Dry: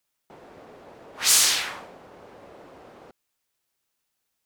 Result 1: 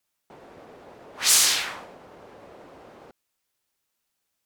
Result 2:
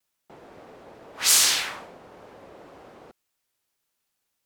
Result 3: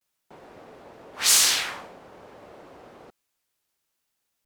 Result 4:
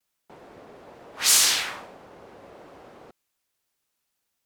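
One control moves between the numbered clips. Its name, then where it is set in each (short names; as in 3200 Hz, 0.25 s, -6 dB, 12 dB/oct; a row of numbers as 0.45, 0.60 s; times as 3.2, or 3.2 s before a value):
vibrato, rate: 10, 1.9, 0.53, 1.2 Hz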